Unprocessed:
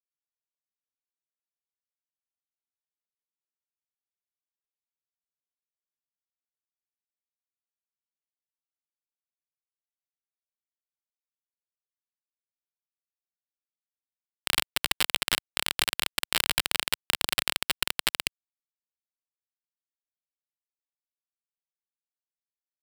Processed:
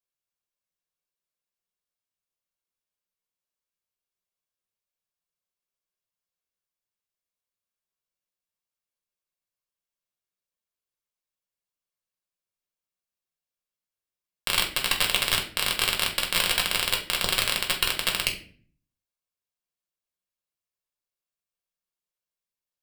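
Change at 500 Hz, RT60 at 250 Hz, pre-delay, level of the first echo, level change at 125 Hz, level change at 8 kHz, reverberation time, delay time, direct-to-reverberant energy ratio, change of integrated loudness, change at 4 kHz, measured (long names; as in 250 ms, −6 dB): +5.5 dB, 0.75 s, 6 ms, no echo audible, +6.0 dB, +3.0 dB, 0.45 s, no echo audible, 0.5 dB, +3.5 dB, +3.5 dB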